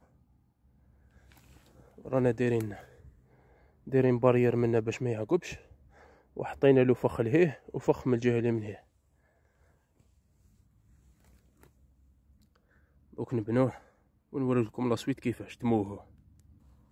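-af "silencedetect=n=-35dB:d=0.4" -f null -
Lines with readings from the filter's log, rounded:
silence_start: 0.00
silence_end: 2.06 | silence_duration: 2.06
silence_start: 2.74
silence_end: 3.88 | silence_duration: 1.14
silence_start: 5.54
silence_end: 6.37 | silence_duration: 0.83
silence_start: 8.73
silence_end: 13.19 | silence_duration: 4.46
silence_start: 13.70
silence_end: 14.34 | silence_duration: 0.64
silence_start: 15.96
silence_end: 16.91 | silence_duration: 0.95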